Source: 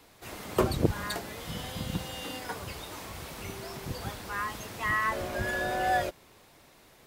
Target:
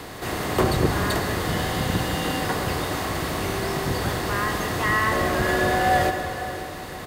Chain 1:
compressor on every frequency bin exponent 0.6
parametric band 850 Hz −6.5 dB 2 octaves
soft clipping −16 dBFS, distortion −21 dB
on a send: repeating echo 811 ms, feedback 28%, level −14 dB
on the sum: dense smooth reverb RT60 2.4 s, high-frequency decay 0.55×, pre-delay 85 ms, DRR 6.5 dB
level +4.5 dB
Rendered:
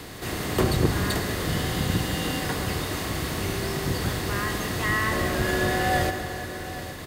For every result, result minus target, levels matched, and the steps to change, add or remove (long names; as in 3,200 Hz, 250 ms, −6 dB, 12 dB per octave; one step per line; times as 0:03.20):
echo 286 ms late; 1,000 Hz band −3.5 dB
change: repeating echo 525 ms, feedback 28%, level −14 dB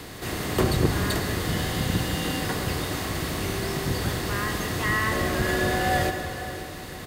1,000 Hz band −3.5 dB
remove: parametric band 850 Hz −6.5 dB 2 octaves